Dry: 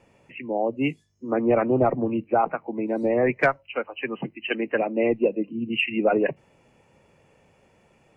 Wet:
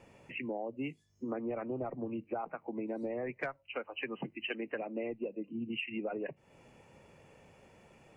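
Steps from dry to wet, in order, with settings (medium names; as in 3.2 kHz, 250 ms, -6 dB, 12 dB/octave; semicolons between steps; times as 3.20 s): compression 6:1, threshold -36 dBFS, peak gain reduction 19.5 dB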